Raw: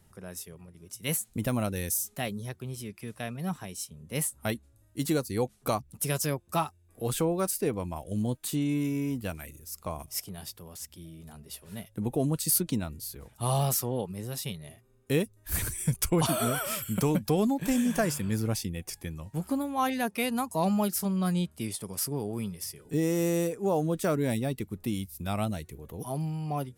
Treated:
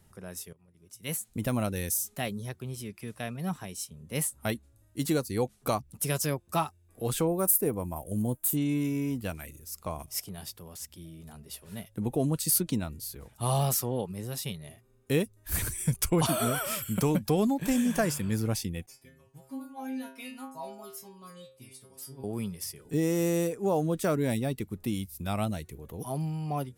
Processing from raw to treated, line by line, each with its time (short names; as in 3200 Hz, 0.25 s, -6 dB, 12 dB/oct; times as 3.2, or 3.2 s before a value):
0.53–1.55 fade in, from -18 dB
7.27–8.57 EQ curve 880 Hz 0 dB, 4400 Hz -11 dB, 13000 Hz +13 dB
18.86–22.24 metallic resonator 130 Hz, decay 0.52 s, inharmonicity 0.002